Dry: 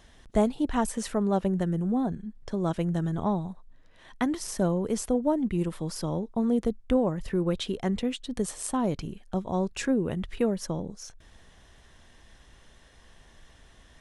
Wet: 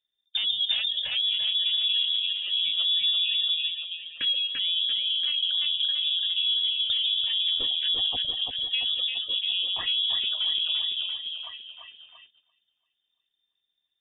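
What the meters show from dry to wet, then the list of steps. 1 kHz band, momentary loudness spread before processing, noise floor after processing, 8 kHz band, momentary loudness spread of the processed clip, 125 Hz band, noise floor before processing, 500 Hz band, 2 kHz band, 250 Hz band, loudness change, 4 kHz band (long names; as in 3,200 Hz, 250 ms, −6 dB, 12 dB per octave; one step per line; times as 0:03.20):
−16.0 dB, 7 LU, −80 dBFS, below −40 dB, 7 LU, below −25 dB, −56 dBFS, below −25 dB, +6.0 dB, below −30 dB, +5.0 dB, +24.5 dB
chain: wavefolder on the positive side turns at −22.5 dBFS
echo through a band-pass that steps 560 ms, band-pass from 320 Hz, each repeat 1.4 octaves, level −2 dB
noise reduction from a noise print of the clip's start 18 dB
low-shelf EQ 390 Hz +7.5 dB
on a send: echo with a time of its own for lows and highs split 460 Hz, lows 139 ms, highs 341 ms, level −4 dB
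on the sum: brickwall limiter −17.5 dBFS, peak gain reduction 10 dB
voice inversion scrambler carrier 3,600 Hz
noise gate −50 dBFS, range −17 dB
level −1.5 dB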